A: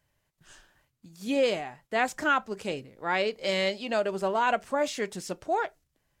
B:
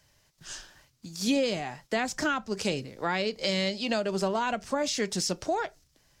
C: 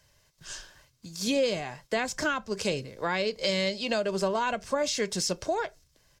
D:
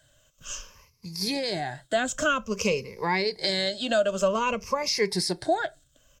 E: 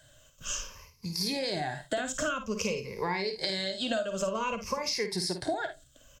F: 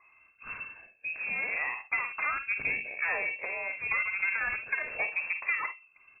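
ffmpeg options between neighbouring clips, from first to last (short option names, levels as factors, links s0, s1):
-filter_complex "[0:a]equalizer=f=5300:w=1.2:g=11,acrossover=split=230[s0][s1];[s1]acompressor=threshold=0.0178:ratio=5[s2];[s0][s2]amix=inputs=2:normalize=0,volume=2.37"
-af "aecho=1:1:1.9:0.32"
-af "afftfilt=real='re*pow(10,15/40*sin(2*PI*(0.83*log(max(b,1)*sr/1024/100)/log(2)-(-0.52)*(pts-256)/sr)))':imag='im*pow(10,15/40*sin(2*PI*(0.83*log(max(b,1)*sr/1024/100)/log(2)-(-0.52)*(pts-256)/sr)))':win_size=1024:overlap=0.75"
-af "acompressor=threshold=0.0251:ratio=6,aecho=1:1:52|75:0.376|0.133,volume=1.41"
-af "aeval=exprs='0.211*(cos(1*acos(clip(val(0)/0.211,-1,1)))-cos(1*PI/2))+0.0188*(cos(8*acos(clip(val(0)/0.211,-1,1)))-cos(8*PI/2))':c=same,lowpass=f=2300:t=q:w=0.5098,lowpass=f=2300:t=q:w=0.6013,lowpass=f=2300:t=q:w=0.9,lowpass=f=2300:t=q:w=2.563,afreqshift=-2700"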